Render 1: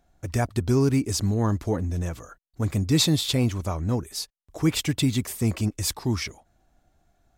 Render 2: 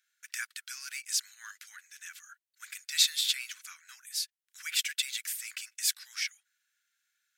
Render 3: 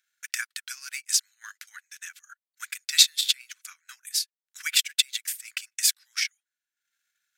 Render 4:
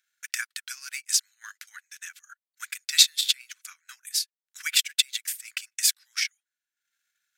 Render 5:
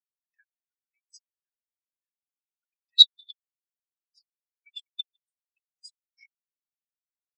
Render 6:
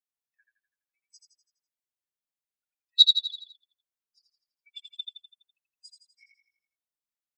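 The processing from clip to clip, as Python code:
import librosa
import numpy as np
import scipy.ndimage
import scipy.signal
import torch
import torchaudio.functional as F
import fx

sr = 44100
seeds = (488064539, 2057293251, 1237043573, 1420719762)

y1 = scipy.signal.sosfilt(scipy.signal.cheby1(5, 1.0, 1500.0, 'highpass', fs=sr, output='sos'), x)
y2 = fx.transient(y1, sr, attack_db=10, sustain_db=-12)
y3 = y2
y4 = fx.spectral_expand(y3, sr, expansion=4.0)
y5 = fx.echo_feedback(y4, sr, ms=83, feedback_pct=48, wet_db=-5.0)
y5 = F.gain(torch.from_numpy(y5), -3.0).numpy()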